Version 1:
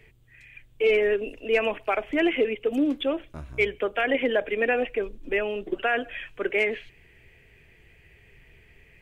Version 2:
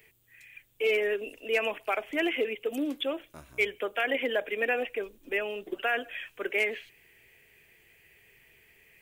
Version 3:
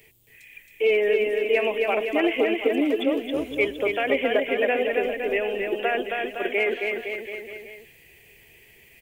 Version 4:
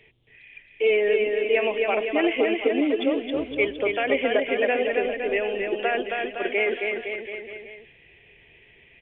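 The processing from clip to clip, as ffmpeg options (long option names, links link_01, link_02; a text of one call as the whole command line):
ffmpeg -i in.wav -af "aemphasis=mode=production:type=bsi,volume=-4dB" out.wav
ffmpeg -i in.wav -filter_complex "[0:a]equalizer=frequency=1400:width_type=o:width=0.86:gain=-9.5,acrossover=split=3000[link_01][link_02];[link_02]acompressor=threshold=-56dB:ratio=4:attack=1:release=60[link_03];[link_01][link_03]amix=inputs=2:normalize=0,aecho=1:1:270|513|731.7|928.5|1106:0.631|0.398|0.251|0.158|0.1,volume=7dB" out.wav
ffmpeg -i in.wav -af "aresample=8000,aresample=44100" out.wav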